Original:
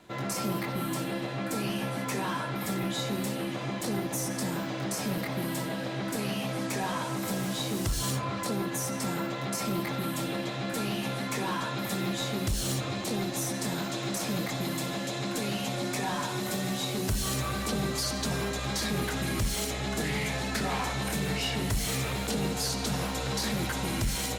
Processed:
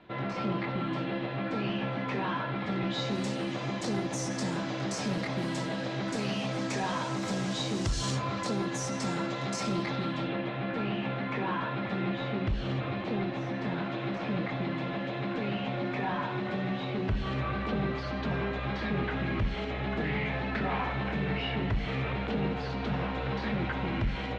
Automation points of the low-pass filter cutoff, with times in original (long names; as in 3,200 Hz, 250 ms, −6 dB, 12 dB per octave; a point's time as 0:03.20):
low-pass filter 24 dB per octave
0:02.71 3,500 Hz
0:03.22 6,900 Hz
0:09.69 6,900 Hz
0:10.40 2,900 Hz